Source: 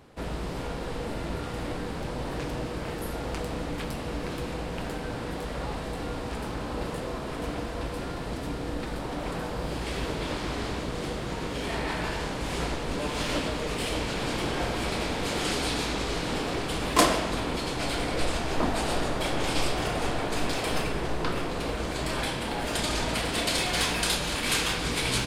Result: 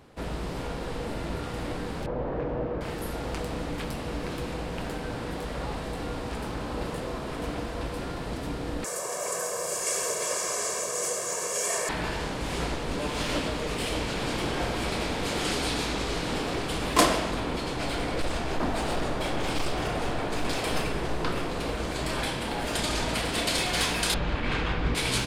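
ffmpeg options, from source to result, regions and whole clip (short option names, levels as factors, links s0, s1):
-filter_complex "[0:a]asettb=1/sr,asplit=3[s0][s1][s2];[s0]atrim=end=2.064[s3];[s1]atrim=start=2.06:end=2.81,asetpts=PTS-STARTPTS,afade=t=in:d=0.004:c=qsin,afade=t=out:st=0.746:d=0.004:c=qsin,lowpass=1500,equalizer=f=520:t=o:w=0.76:g=6.5[s4];[s2]atrim=start=2.806[s5];[s3][s4]acrossfade=d=0.004:c1=hsin:c2=qsin[s6];[s6][s5]acrossfade=d=0.004:c1=qsin:c2=hsin,asettb=1/sr,asplit=3[s7][s8][s9];[s7]atrim=end=8.844[s10];[s8]atrim=start=8.84:end=11.89,asetpts=PTS-STARTPTS,afade=t=in:d=0.004:c=qsin,afade=t=out:st=3.046:d=0.004:c=qsin,highpass=390,highshelf=f=5100:t=q:w=3:g=11.5,aecho=1:1:1.8:0.93,atrim=end_sample=134505[s11];[s9]atrim=start=11.886[s12];[s10][s11]acrossfade=d=0.004:c1=hsin:c2=qsin[s13];[s13][s12]acrossfade=d=0.004:c1=qsin:c2=hsin,asettb=1/sr,asplit=3[s14][s15][s16];[s14]atrim=end=17.314[s17];[s15]atrim=start=17.31:end=20.45,asetpts=PTS-STARTPTS,afade=t=in:d=0.004:c=qsin,afade=t=out:st=3.136:d=0.004:c=qsin,highshelf=f=3700:g=-4.5,asoftclip=type=hard:threshold=0.075[s18];[s16]atrim=start=20.446[s19];[s17][s18]acrossfade=d=0.004:c1=hsin:c2=qsin[s20];[s20][s19]acrossfade=d=0.004:c1=qsin:c2=hsin,asettb=1/sr,asplit=3[s21][s22][s23];[s21]atrim=end=24.144[s24];[s22]atrim=start=24.14:end=24.95,asetpts=PTS-STARTPTS,afade=t=in:d=0.004:c=qsin,afade=t=out:st=0.806:d=0.004:c=qsin,lowpass=2200,lowshelf=f=110:g=10[s25];[s23]atrim=start=24.946[s26];[s24][s25]acrossfade=d=0.004:c1=hsin:c2=qsin[s27];[s27][s26]acrossfade=d=0.004:c1=qsin:c2=hsin"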